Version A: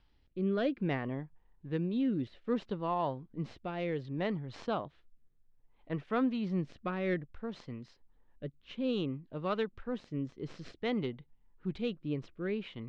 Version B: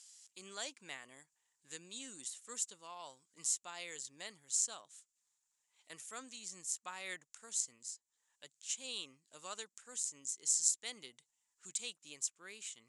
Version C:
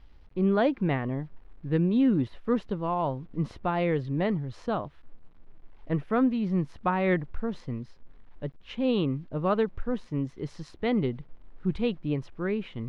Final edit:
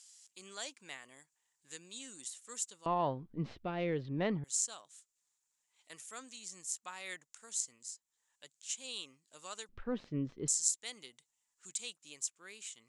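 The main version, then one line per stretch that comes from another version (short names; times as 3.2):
B
2.86–4.44 from A
9.69–10.48 from A
not used: C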